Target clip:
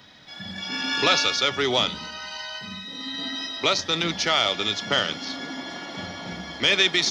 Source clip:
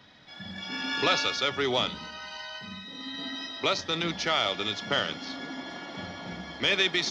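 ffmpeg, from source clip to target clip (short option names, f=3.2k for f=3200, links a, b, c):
-af "highshelf=f=5.6k:g=9.5,volume=3.5dB"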